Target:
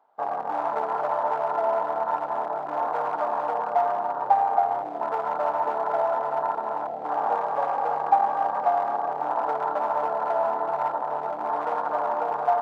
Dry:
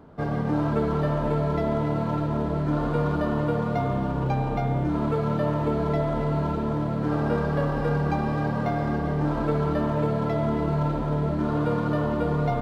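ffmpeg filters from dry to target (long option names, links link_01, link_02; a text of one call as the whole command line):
ffmpeg -i in.wav -af "afwtdn=0.0447,aeval=exprs='clip(val(0),-1,0.075)':channel_layout=same,highpass=frequency=800:width_type=q:width=4.9" out.wav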